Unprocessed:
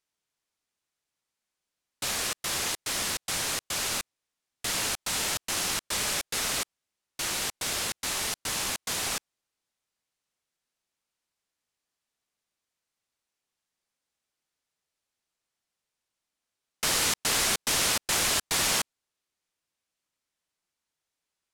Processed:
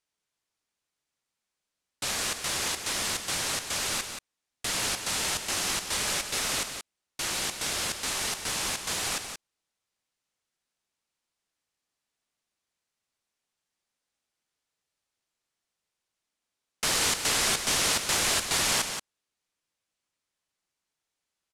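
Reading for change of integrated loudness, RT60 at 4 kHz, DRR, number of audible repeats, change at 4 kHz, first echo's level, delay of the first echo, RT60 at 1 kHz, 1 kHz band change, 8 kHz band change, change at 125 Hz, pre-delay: 0.0 dB, no reverb, no reverb, 1, +0.5 dB, -8.0 dB, 178 ms, no reverb, +0.5 dB, 0.0 dB, +0.5 dB, no reverb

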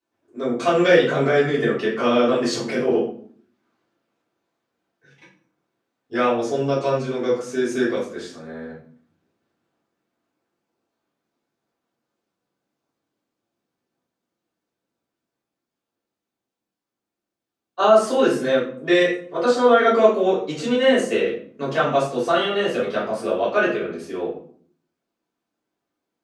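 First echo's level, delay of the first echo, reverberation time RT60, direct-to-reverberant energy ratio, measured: no echo, no echo, 0.55 s, -8.5 dB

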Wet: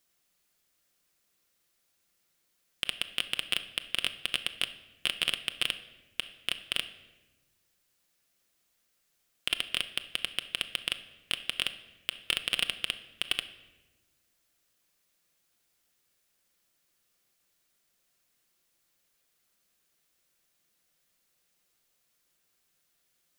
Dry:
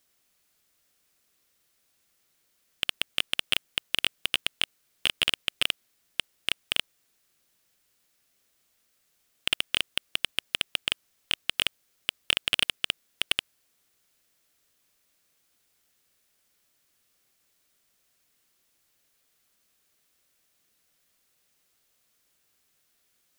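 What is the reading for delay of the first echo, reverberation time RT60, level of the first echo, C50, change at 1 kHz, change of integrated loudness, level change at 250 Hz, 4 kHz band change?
no echo, 1.1 s, no echo, 13.5 dB, -3.5 dB, -3.5 dB, -3.0 dB, -3.5 dB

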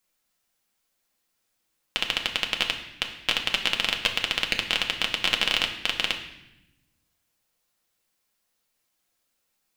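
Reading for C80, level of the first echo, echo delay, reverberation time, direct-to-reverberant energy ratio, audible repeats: 10.5 dB, no echo, no echo, 0.90 s, 1.5 dB, no echo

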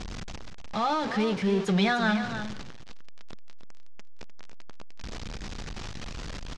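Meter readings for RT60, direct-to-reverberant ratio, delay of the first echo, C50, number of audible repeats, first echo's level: no reverb, no reverb, 302 ms, no reverb, 1, -10.0 dB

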